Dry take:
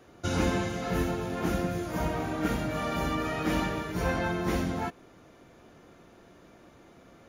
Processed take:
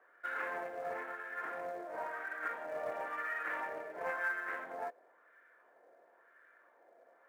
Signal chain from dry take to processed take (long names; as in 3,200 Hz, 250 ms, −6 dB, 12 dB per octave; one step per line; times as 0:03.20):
loudspeaker in its box 490–2,800 Hz, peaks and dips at 500 Hz +4 dB, 830 Hz −6 dB, 1,200 Hz −7 dB, 1,700 Hz +9 dB, 2,700 Hz −6 dB
auto-filter band-pass sine 0.97 Hz 670–1,500 Hz
in parallel at −6 dB: floating-point word with a short mantissa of 2 bits
on the sum: highs frequency-modulated by the lows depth 0.14 ms
level −3 dB